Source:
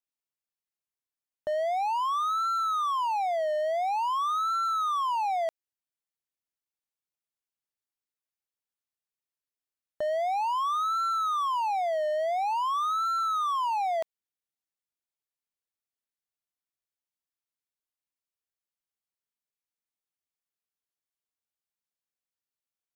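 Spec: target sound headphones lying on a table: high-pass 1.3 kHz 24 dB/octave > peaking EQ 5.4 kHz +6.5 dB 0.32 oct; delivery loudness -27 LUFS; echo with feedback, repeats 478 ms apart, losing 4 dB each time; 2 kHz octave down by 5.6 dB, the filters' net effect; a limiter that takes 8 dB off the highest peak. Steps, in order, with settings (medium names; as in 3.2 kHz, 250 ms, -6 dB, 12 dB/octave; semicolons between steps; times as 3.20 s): peaking EQ 2 kHz -6.5 dB; peak limiter -32 dBFS; high-pass 1.3 kHz 24 dB/octave; peaking EQ 5.4 kHz +6.5 dB 0.32 oct; feedback delay 478 ms, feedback 63%, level -4 dB; trim +14 dB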